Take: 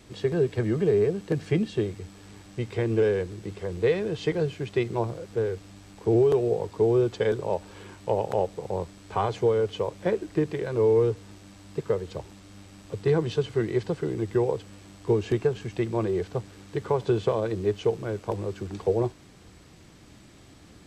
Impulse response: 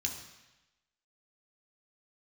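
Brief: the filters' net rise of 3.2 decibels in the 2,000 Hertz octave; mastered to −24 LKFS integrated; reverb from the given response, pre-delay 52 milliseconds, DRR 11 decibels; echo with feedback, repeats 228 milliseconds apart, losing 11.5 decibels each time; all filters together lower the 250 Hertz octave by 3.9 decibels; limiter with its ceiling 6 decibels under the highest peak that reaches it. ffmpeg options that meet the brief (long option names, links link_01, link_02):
-filter_complex "[0:a]equalizer=frequency=250:width_type=o:gain=-7,equalizer=frequency=2000:width_type=o:gain=4,alimiter=limit=-18.5dB:level=0:latency=1,aecho=1:1:228|456|684:0.266|0.0718|0.0194,asplit=2[link_01][link_02];[1:a]atrim=start_sample=2205,adelay=52[link_03];[link_02][link_03]afir=irnorm=-1:irlink=0,volume=-13dB[link_04];[link_01][link_04]amix=inputs=2:normalize=0,volume=6.5dB"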